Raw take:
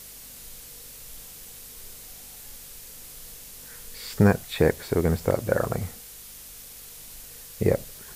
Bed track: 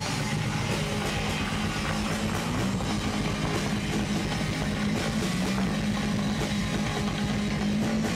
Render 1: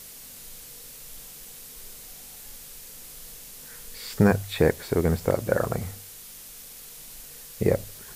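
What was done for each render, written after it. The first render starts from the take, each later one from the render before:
hum removal 50 Hz, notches 2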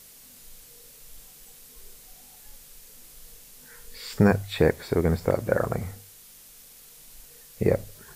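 noise reduction from a noise print 6 dB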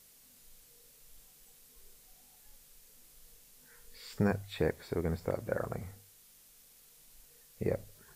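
level −10.5 dB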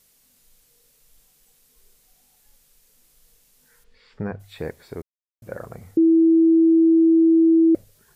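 0:03.83–0:04.39: low-pass filter 3,500 Hz → 2,000 Hz
0:05.02–0:05.42: silence
0:05.97–0:07.75: beep over 327 Hz −11.5 dBFS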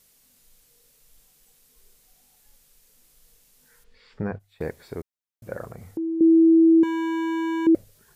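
0:04.22–0:04.67: noise gate −39 dBFS, range −16 dB
0:05.69–0:06.21: downward compressor 2 to 1, threshold −36 dBFS
0:06.83–0:07.67: hard clipping −25 dBFS

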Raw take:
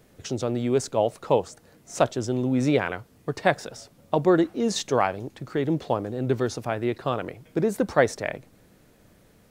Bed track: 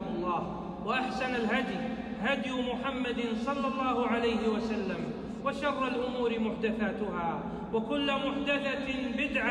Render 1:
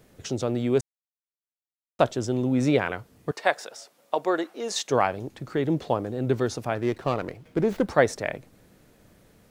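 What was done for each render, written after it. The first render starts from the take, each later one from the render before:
0:00.81–0:01.99: silence
0:03.31–0:04.90: high-pass filter 530 Hz
0:06.75–0:07.90: windowed peak hold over 5 samples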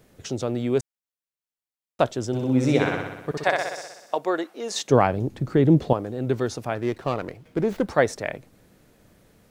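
0:02.27–0:04.18: flutter between parallel walls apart 10.6 metres, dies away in 0.99 s
0:04.74–0:05.93: low-shelf EQ 410 Hz +12 dB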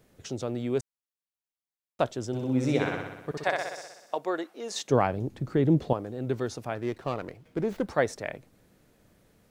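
level −5.5 dB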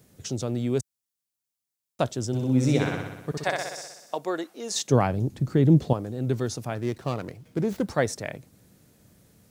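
high-pass filter 71 Hz
bass and treble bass +8 dB, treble +9 dB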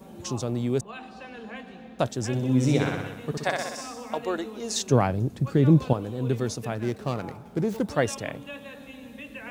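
mix in bed track −10.5 dB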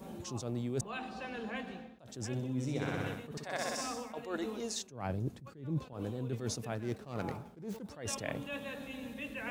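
reversed playback
downward compressor 6 to 1, threshold −33 dBFS, peak gain reduction 18.5 dB
reversed playback
level that may rise only so fast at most 120 dB per second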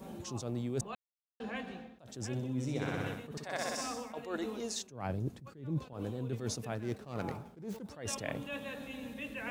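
0:00.95–0:01.40: silence

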